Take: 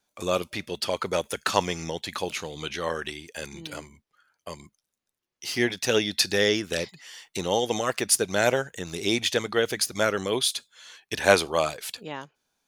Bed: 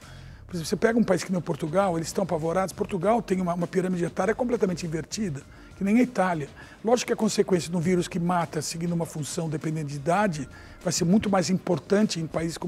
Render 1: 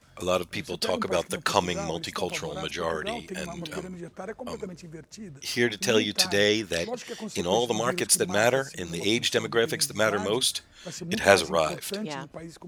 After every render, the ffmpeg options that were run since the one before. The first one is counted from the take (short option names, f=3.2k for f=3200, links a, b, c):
-filter_complex "[1:a]volume=-12.5dB[a];[0:a][a]amix=inputs=2:normalize=0"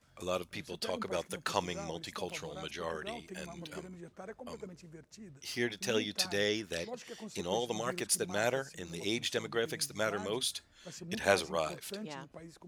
-af "volume=-9.5dB"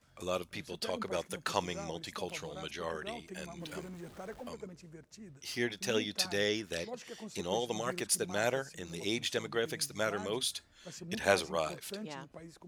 -filter_complex "[0:a]asettb=1/sr,asplit=3[a][b][c];[a]atrim=end=3.604[d];[b]atrim=start=3.6:end=4.49,asetpts=PTS-STARTPTS,afade=t=in:d=0.004:c=qsin,afade=t=out:st=0.886:d=0.004:c=qsin,aeval=exprs='val(0)+0.5*0.00316*sgn(val(0))':c=same[e];[c]atrim=start=4.486[f];[d][e]acrossfade=d=0.004:c1=hsin:c2=qsin[g];[g][f]acrossfade=d=0.004:c1=qsin:c2=hsin"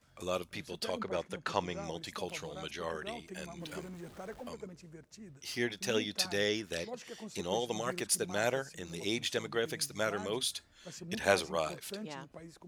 -filter_complex "[0:a]asettb=1/sr,asplit=3[a][b][c];[a]atrim=end=1.014[d];[b]atrim=start=1.01:end=1.84,asetpts=PTS-STARTPTS,afade=t=in:d=0.004:c=qsin,afade=t=out:st=0.826:d=0.004:c=qsin,aemphasis=mode=reproduction:type=50fm[e];[c]atrim=start=1.836[f];[d][e]acrossfade=d=0.004:c1=hsin:c2=qsin[g];[g][f]acrossfade=d=0.004:c1=qsin:c2=hsin"